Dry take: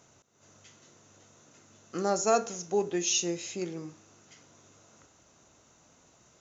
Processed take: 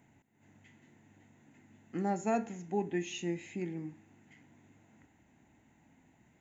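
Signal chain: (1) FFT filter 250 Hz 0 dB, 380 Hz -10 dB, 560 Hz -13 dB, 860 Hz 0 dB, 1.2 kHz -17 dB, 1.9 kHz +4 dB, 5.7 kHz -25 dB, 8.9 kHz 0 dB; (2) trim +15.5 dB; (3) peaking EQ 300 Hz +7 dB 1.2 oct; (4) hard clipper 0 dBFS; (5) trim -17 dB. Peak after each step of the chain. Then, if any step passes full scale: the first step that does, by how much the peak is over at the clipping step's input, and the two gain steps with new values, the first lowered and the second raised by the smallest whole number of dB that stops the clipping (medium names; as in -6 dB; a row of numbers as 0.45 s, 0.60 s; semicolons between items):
-20.5 dBFS, -5.0 dBFS, -3.5 dBFS, -3.5 dBFS, -20.5 dBFS; nothing clips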